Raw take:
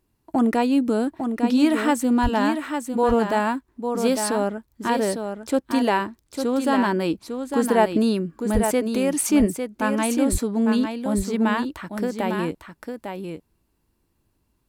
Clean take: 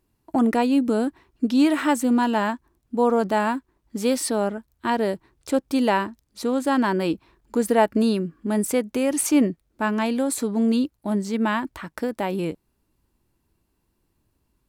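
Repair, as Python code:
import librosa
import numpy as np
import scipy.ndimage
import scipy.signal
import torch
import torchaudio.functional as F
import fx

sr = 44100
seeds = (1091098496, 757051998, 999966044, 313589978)

y = fx.highpass(x, sr, hz=140.0, slope=24, at=(2.22, 2.34), fade=0.02)
y = fx.highpass(y, sr, hz=140.0, slope=24, at=(8.53, 8.65), fade=0.02)
y = fx.highpass(y, sr, hz=140.0, slope=24, at=(10.31, 10.43), fade=0.02)
y = fx.fix_echo_inverse(y, sr, delay_ms=852, level_db=-6.5)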